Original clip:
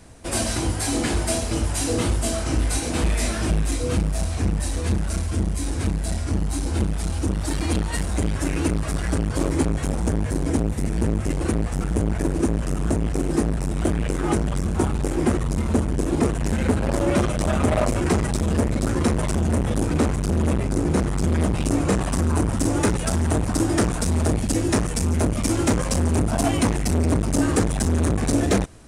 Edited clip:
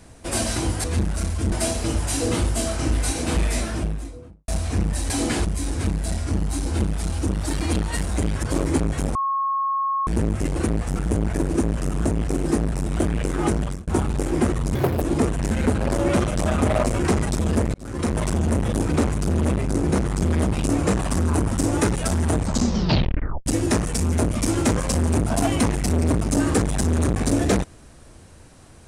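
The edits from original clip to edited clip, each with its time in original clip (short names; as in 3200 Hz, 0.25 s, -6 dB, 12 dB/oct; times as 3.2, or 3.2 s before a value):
0.84–1.19 swap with 4.77–5.45
3.09–4.15 studio fade out
8.43–9.28 cut
10–10.92 bleep 1090 Hz -20 dBFS
14.47–14.72 fade out
15.6–16.03 speed 163%
18.76–19.21 fade in
23.37 tape stop 1.11 s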